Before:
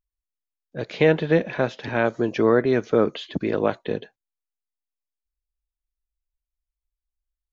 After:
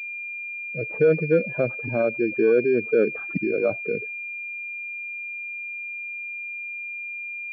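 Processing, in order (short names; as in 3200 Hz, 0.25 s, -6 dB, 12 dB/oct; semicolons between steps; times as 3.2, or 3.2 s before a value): spectral contrast raised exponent 2.3; pulse-width modulation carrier 2400 Hz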